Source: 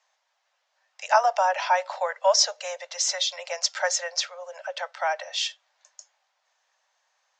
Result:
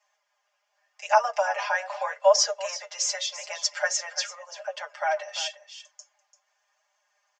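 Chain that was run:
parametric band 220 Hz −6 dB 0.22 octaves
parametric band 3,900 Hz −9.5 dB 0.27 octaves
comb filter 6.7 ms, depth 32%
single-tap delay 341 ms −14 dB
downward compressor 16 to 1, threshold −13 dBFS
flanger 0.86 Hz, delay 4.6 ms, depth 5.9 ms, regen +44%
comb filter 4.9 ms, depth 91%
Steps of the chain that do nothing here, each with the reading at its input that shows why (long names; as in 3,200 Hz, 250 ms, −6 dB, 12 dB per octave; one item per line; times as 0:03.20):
parametric band 220 Hz: nothing at its input below 450 Hz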